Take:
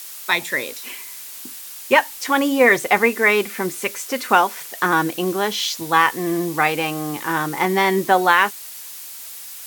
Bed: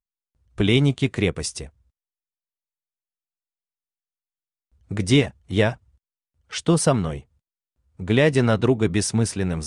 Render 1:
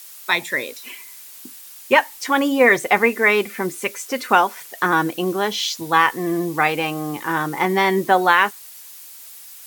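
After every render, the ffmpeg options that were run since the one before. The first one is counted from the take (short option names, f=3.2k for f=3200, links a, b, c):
-af "afftdn=nr=6:nf=-36"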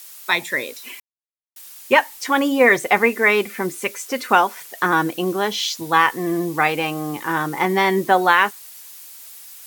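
-filter_complex "[0:a]asplit=3[a][b][c];[a]atrim=end=1,asetpts=PTS-STARTPTS,afade=t=out:st=0.996:d=0.004:c=hsin[d];[b]atrim=start=1:end=1.56,asetpts=PTS-STARTPTS,volume=0[e];[c]atrim=start=1.56,asetpts=PTS-STARTPTS,afade=t=in:d=0.004:c=hsin[f];[d][e][f]concat=n=3:v=0:a=1"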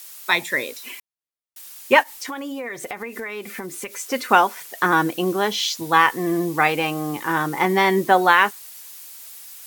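-filter_complex "[0:a]asplit=3[a][b][c];[a]afade=t=out:st=2.02:d=0.02[d];[b]acompressor=threshold=-27dB:ratio=12:attack=3.2:release=140:knee=1:detection=peak,afade=t=in:st=2.02:d=0.02,afade=t=out:st=3.97:d=0.02[e];[c]afade=t=in:st=3.97:d=0.02[f];[d][e][f]amix=inputs=3:normalize=0"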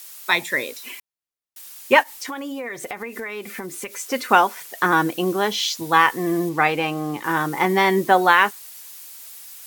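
-filter_complex "[0:a]asettb=1/sr,asplit=3[a][b][c];[a]atrim=end=6.494[d];[b]atrim=start=6.49:end=7.24,asetpts=PTS-STARTPTS,afade=t=in:d=0.004:c=qsin,afade=t=out:st=0.746:d=0.004:c=qsin,highshelf=f=6.5k:g=-8.5[e];[c]atrim=start=7.236[f];[d][e]acrossfade=d=0.004:c1=hsin:c2=qsin[g];[g][f]acrossfade=d=0.004:c1=qsin:c2=hsin"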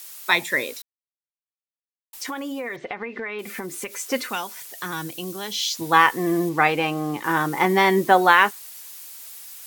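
-filter_complex "[0:a]asettb=1/sr,asplit=3[a][b][c];[a]atrim=end=2.764[d];[b]atrim=start=2.76:end=3.39,asetpts=PTS-STARTPTS,afade=t=in:d=0.004:c=qsin,afade=t=out:st=0.626:d=0.004:c=qsin,lowpass=f=3.9k:w=0.5412,lowpass=f=3.9k:w=1.3066[e];[c]atrim=start=3.386[f];[d][e]acrossfade=d=0.004:c1=hsin:c2=qsin[g];[g][f]acrossfade=d=0.004:c1=qsin:c2=hsin,asettb=1/sr,asplit=3[h][i][j];[h]atrim=end=4.294[k];[i]atrim=start=4.29:end=5.74,asetpts=PTS-STARTPTS,afade=t=in:d=0.004:c=qsin,afade=t=out:st=1.446:d=0.004:c=qsin,acrossover=split=140|3000[l][m][n];[m]acompressor=threshold=-55dB:ratio=1.5:attack=3.2:release=140:knee=2.83:detection=peak[o];[l][o][n]amix=inputs=3:normalize=0[p];[j]atrim=start=5.736[q];[k][p]acrossfade=d=0.004:c1=hsin:c2=qsin[r];[r][q]acrossfade=d=0.004:c1=qsin:c2=hsin,asplit=3[s][t][u];[s]atrim=end=0.82,asetpts=PTS-STARTPTS,afade=t=out:st=0.816:d=0.004:c=hsin[v];[t]atrim=start=0.82:end=2.13,asetpts=PTS-STARTPTS,volume=0[w];[u]atrim=start=2.13,asetpts=PTS-STARTPTS,afade=t=in:d=0.004:c=hsin[x];[v][w][x]concat=n=3:v=0:a=1"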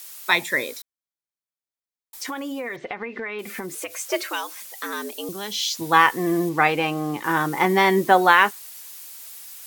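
-filter_complex "[0:a]asettb=1/sr,asplit=3[a][b][c];[a]atrim=end=0.494[d];[b]atrim=start=0.49:end=2.22,asetpts=PTS-STARTPTS,afade=t=in:d=0.004:c=qsin,afade=t=out:st=1.726:d=0.004:c=qsin,bandreject=f=2.8k:w=6.8[e];[c]atrim=start=2.216[f];[d][e]acrossfade=d=0.004:c1=hsin:c2=qsin[g];[g][f]acrossfade=d=0.004:c1=qsin:c2=hsin,asettb=1/sr,asplit=3[h][i][j];[h]atrim=end=3.754[k];[i]atrim=start=3.75:end=5.29,asetpts=PTS-STARTPTS,afade=t=in:d=0.004:c=qsin,afade=t=out:st=1.536:d=0.004:c=qsin,afreqshift=100[l];[j]atrim=start=5.286[m];[k][l]acrossfade=d=0.004:c1=hsin:c2=qsin[n];[n][m]acrossfade=d=0.004:c1=qsin:c2=hsin"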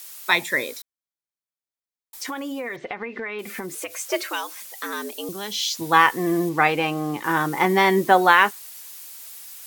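-af anull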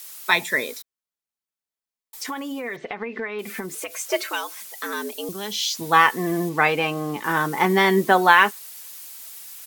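-af "aecho=1:1:4.6:0.33"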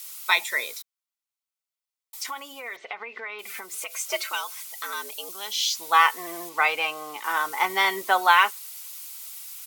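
-af "highpass=860,bandreject=f=1.7k:w=6"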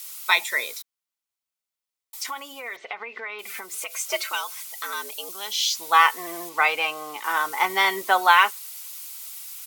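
-af "volume=1.5dB"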